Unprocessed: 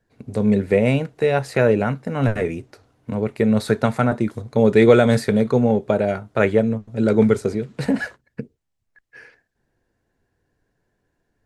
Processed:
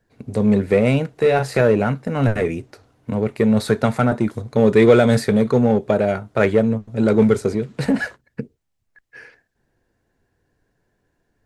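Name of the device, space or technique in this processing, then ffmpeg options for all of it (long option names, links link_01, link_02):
parallel distortion: -filter_complex "[0:a]asettb=1/sr,asplit=3[link_01][link_02][link_03];[link_01]atrim=end=1.184[link_04];[link_02]atrim=start=1.18:end=1.61,asetpts=PTS-STARTPTS,afade=type=in:duration=0.004:curve=qsin,afade=type=out:start_time=0.426:duration=0.004:curve=qsin,asplit=2[link_05][link_06];[link_06]adelay=38,volume=-6.5dB[link_07];[link_05][link_07]amix=inputs=2:normalize=0,atrim=end_sample=18963[link_08];[link_03]atrim=start=1.606[link_09];[link_04][link_08]acrossfade=duration=0.004:curve1=hsin:curve2=qsin[link_10];[link_10][link_09]acrossfade=duration=0.004:curve1=qsin:curve2=hsin,asplit=2[link_11][link_12];[link_12]asoftclip=type=hard:threshold=-17.5dB,volume=-6dB[link_13];[link_11][link_13]amix=inputs=2:normalize=0,volume=-1dB"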